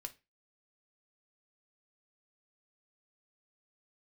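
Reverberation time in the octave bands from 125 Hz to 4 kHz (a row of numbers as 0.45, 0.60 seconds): 0.30, 0.30, 0.25, 0.25, 0.30, 0.25 seconds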